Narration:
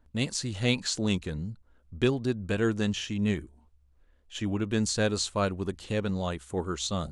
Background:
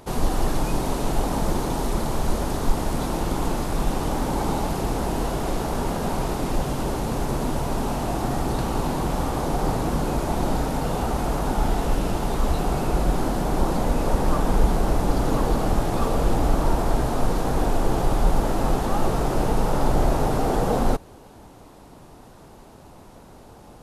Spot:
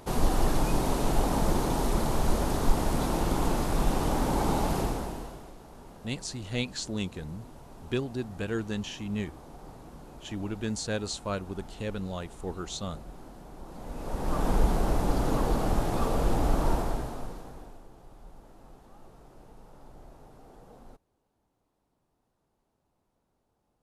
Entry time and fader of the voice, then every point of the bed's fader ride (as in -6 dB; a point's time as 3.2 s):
5.90 s, -5.0 dB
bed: 4.8 s -2.5 dB
5.55 s -23.5 dB
13.63 s -23.5 dB
14.45 s -5 dB
16.74 s -5 dB
17.9 s -30.5 dB